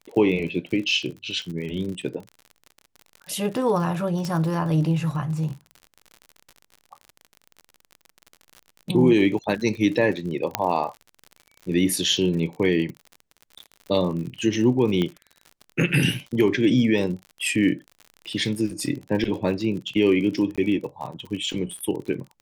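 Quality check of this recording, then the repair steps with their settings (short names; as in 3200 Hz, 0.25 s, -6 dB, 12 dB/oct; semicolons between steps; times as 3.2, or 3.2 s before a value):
crackle 54/s -32 dBFS
4.25 pop -17 dBFS
10.55 pop -4 dBFS
15.02 pop -14 dBFS
20.56–20.58 gap 16 ms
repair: de-click; interpolate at 20.56, 16 ms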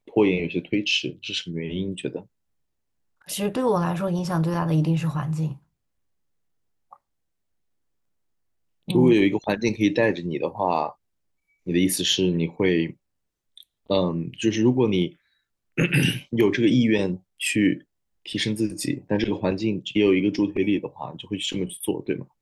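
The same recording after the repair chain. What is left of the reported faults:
15.02 pop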